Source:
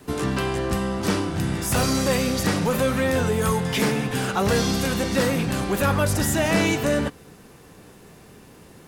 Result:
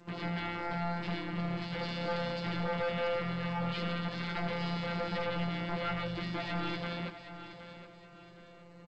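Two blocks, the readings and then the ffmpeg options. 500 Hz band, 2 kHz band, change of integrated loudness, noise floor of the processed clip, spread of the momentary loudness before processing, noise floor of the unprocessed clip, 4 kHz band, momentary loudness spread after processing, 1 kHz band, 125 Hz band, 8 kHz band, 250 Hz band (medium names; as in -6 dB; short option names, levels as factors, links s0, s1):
-13.5 dB, -11.0 dB, -12.5 dB, -54 dBFS, 4 LU, -48 dBFS, -11.5 dB, 16 LU, -10.0 dB, -12.0 dB, under -30 dB, -13.5 dB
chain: -filter_complex "[0:a]bandreject=f=60:t=h:w=6,bandreject=f=120:t=h:w=6,bandreject=f=180:t=h:w=6,bandreject=f=240:t=h:w=6,bandreject=f=300:t=h:w=6,bandreject=f=360:t=h:w=6,bandreject=f=420:t=h:w=6,alimiter=limit=0.141:level=0:latency=1:release=83,adynamicsmooth=sensitivity=5.5:basefreq=2300,afftfilt=real='hypot(re,im)*cos(PI*b)':imag='0':win_size=1024:overlap=0.75,aeval=exprs='0.0501*(abs(mod(val(0)/0.0501+3,4)-2)-1)':c=same,asplit=2[s0][s1];[s1]adelay=16,volume=0.501[s2];[s0][s2]amix=inputs=2:normalize=0,aecho=1:1:768|1536|2304|3072:0.251|0.0879|0.0308|0.0108,aresample=11025,aresample=44100,volume=0.708" -ar 16000 -c:a g722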